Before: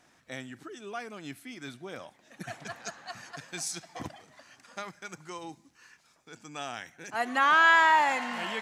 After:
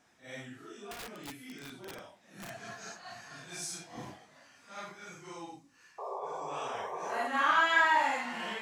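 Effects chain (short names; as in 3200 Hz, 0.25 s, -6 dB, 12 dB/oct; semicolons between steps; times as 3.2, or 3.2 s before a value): phase scrambler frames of 0.2 s; 0.91–2.5 wrapped overs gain 33.5 dB; 5.98–7.28 painted sound noise 370–1200 Hz -35 dBFS; gain -4 dB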